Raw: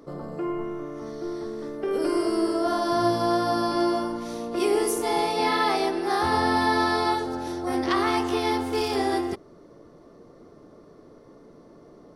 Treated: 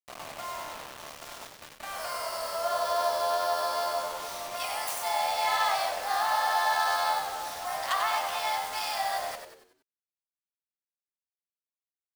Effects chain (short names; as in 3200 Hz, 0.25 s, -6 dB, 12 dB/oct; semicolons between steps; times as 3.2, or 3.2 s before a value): tracing distortion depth 0.092 ms; steep high-pass 630 Hz 72 dB/oct; in parallel at -1.5 dB: compressor 16:1, threshold -35 dBFS, peak gain reduction 16 dB; on the sum: bit-crush 6-bit; on a send: frequency-shifting echo 94 ms, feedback 45%, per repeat -82 Hz, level -7 dB; on the sum: gain -4.5 dB